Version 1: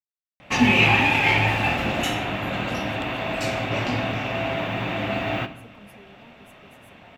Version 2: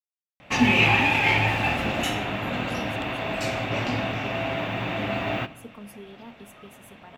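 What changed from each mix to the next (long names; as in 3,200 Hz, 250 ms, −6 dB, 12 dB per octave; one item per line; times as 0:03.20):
speech +7.5 dB
background: send −6.0 dB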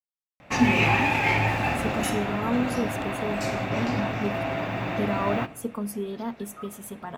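speech +12.0 dB
master: add parametric band 3,100 Hz −7.5 dB 0.69 octaves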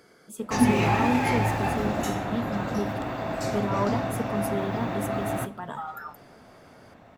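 speech: entry −1.45 s
background: add parametric band 2,500 Hz −9.5 dB 0.77 octaves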